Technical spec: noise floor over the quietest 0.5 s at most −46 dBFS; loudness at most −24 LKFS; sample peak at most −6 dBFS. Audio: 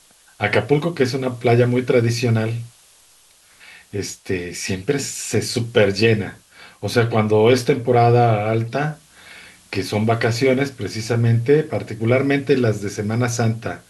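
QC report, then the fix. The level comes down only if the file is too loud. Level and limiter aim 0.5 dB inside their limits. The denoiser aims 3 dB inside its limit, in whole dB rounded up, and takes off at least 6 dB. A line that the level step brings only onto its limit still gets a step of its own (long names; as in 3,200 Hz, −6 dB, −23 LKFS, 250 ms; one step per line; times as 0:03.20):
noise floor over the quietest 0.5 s −52 dBFS: in spec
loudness −19.0 LKFS: out of spec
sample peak −3.5 dBFS: out of spec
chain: level −5.5 dB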